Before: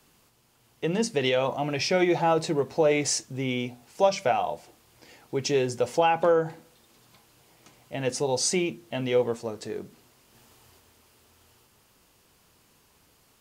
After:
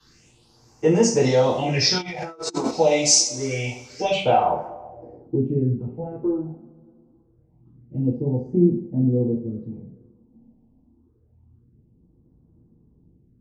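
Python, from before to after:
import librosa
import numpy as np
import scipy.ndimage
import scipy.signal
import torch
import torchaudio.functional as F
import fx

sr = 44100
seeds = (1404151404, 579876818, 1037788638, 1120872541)

y = fx.phaser_stages(x, sr, stages=6, low_hz=100.0, high_hz=3700.0, hz=0.26, feedback_pct=25)
y = fx.rev_double_slope(y, sr, seeds[0], early_s=0.41, late_s=2.1, knee_db=-22, drr_db=-9.5)
y = fx.filter_sweep_lowpass(y, sr, from_hz=6100.0, to_hz=230.0, start_s=3.94, end_s=5.48, q=1.7)
y = fx.over_compress(y, sr, threshold_db=-26.0, ratio=-0.5, at=(1.98, 2.71))
y = y * librosa.db_to_amplitude(-2.0)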